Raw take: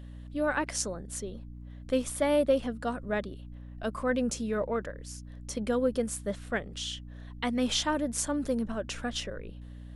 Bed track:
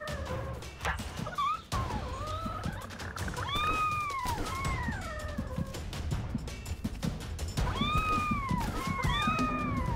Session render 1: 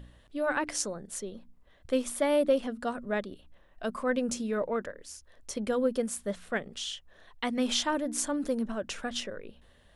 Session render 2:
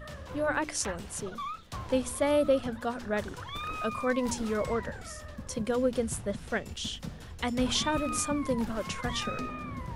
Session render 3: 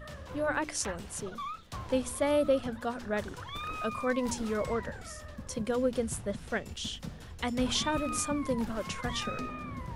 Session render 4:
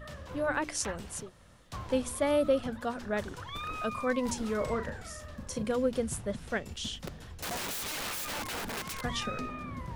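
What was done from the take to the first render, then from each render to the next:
hum removal 60 Hz, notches 5
mix in bed track −6.5 dB
level −1.5 dB
0:01.25–0:01.67: fill with room tone, crossfade 0.16 s; 0:04.57–0:05.72: double-tracking delay 38 ms −9 dB; 0:07.07–0:09.02: wrap-around overflow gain 31.5 dB

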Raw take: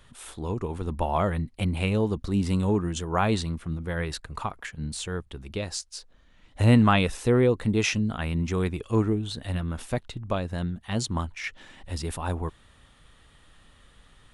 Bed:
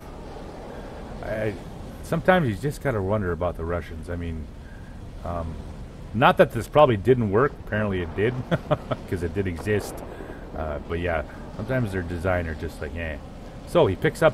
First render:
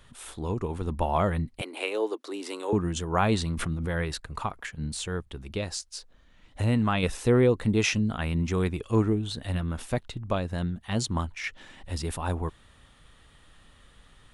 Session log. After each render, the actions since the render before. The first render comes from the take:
0:01.61–0:02.73: Butterworth high-pass 310 Hz 48 dB per octave
0:03.31–0:04.11: background raised ahead of every attack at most 28 dB per second
0:05.71–0:07.03: downward compressor 1.5 to 1, threshold −31 dBFS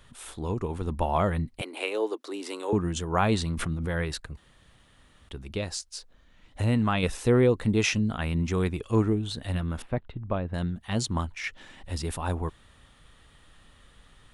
0:04.37–0:05.29: fill with room tone
0:09.82–0:10.54: high-frequency loss of the air 490 metres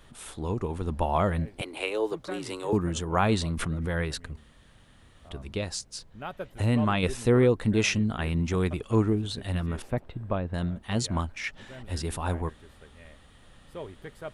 mix in bed −21 dB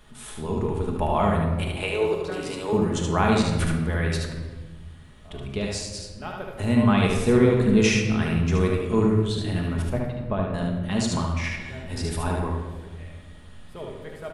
single-tap delay 74 ms −4 dB
rectangular room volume 1,100 cubic metres, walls mixed, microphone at 1.4 metres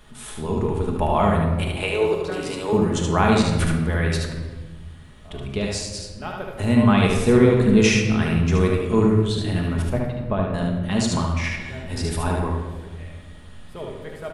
level +3 dB

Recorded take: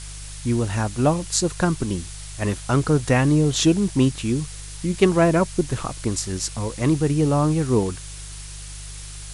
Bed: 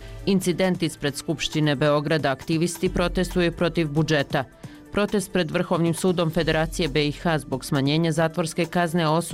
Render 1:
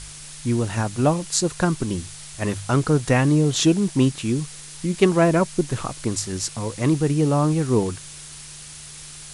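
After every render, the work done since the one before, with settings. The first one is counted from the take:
hum removal 50 Hz, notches 2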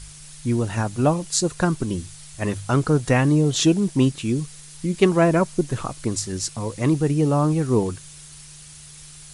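broadband denoise 6 dB, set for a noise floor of −40 dBFS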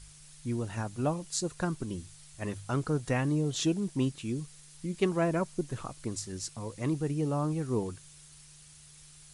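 level −11 dB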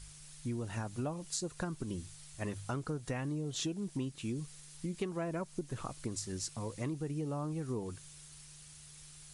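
downward compressor 6 to 1, threshold −34 dBFS, peak gain reduction 12 dB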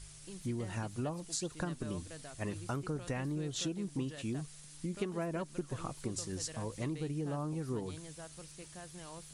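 mix in bed −28.5 dB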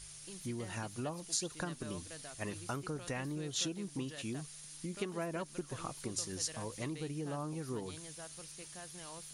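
spectral tilt +1.5 dB per octave
notch filter 7,800 Hz, Q 8

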